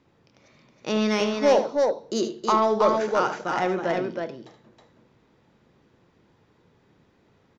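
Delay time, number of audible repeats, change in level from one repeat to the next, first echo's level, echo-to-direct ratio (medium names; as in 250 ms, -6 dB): 75 ms, 2, no regular repeats, -10.0 dB, -3.0 dB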